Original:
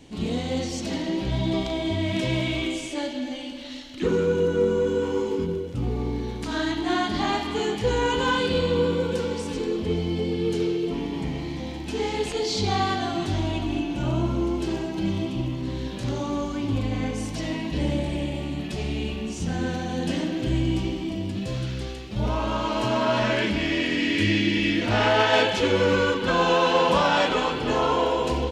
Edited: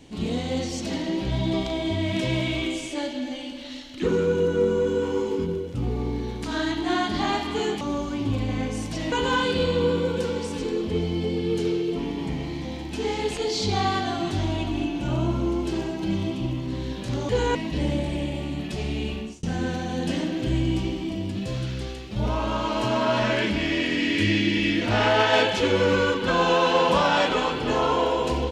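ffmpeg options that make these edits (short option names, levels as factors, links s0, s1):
-filter_complex "[0:a]asplit=6[s0][s1][s2][s3][s4][s5];[s0]atrim=end=7.812[s6];[s1]atrim=start=16.238:end=17.552[s7];[s2]atrim=start=8.068:end=16.242[s8];[s3]atrim=start=7.808:end=8.072[s9];[s4]atrim=start=17.548:end=19.43,asetpts=PTS-STARTPTS,afade=t=out:st=1.622:d=0.26[s10];[s5]atrim=start=19.43,asetpts=PTS-STARTPTS,afade=t=in:d=0.004:c=hsin[s11];[s6][s7]acrossfade=d=0.004:c1=hsin:c2=hsin[s12];[s12][s8]acrossfade=d=0.004:c1=hsin:c2=hsin[s13];[s13][s9]acrossfade=d=0.004:c1=hsin:c2=hsin[s14];[s10][s11]concat=n=2:v=0:a=1[s15];[s14][s15]acrossfade=d=0.004:c1=hsin:c2=hsin"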